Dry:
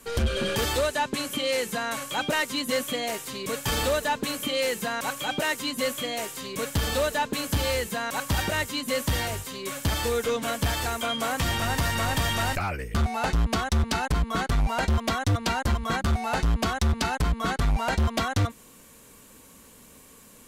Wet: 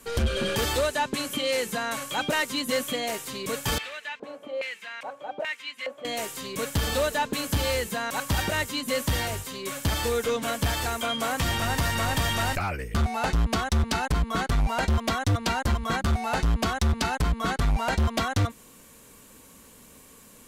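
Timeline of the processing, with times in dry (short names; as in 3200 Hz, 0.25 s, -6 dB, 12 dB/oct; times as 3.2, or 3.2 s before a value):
3.78–6.05 LFO band-pass square 1.2 Hz 630–2300 Hz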